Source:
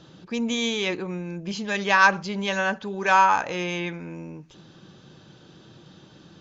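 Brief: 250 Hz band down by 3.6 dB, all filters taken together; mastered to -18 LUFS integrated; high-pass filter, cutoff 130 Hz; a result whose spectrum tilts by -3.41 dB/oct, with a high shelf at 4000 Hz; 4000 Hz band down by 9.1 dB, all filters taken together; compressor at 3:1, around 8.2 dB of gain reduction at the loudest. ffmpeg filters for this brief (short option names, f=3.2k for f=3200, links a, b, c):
-af "highpass=130,equalizer=f=250:t=o:g=-4,highshelf=f=4k:g=-7,equalizer=f=4k:t=o:g=-8.5,acompressor=threshold=-25dB:ratio=3,volume=12.5dB"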